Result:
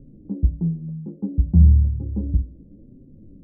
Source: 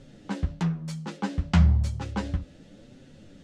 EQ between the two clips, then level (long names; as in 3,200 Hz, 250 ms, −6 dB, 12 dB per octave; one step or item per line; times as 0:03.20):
transistor ladder low-pass 440 Hz, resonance 30%
spectral tilt −1.5 dB per octave
parametric band 60 Hz +12.5 dB 0.38 octaves
+5.0 dB